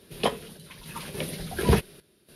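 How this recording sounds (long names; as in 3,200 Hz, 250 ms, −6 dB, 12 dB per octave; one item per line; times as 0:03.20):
sample-and-hold tremolo 3.5 Hz, depth 80%
Ogg Vorbis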